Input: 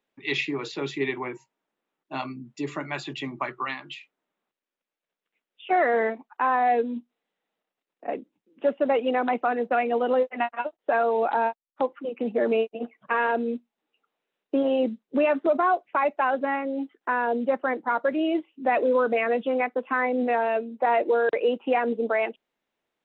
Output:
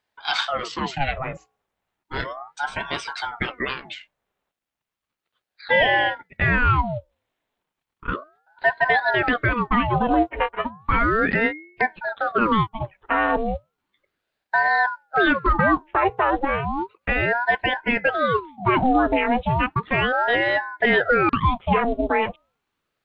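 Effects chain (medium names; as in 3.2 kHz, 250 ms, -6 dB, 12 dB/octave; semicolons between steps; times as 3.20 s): de-hum 307.3 Hz, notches 4; ring modulator with a swept carrier 730 Hz, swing 75%, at 0.34 Hz; trim +6.5 dB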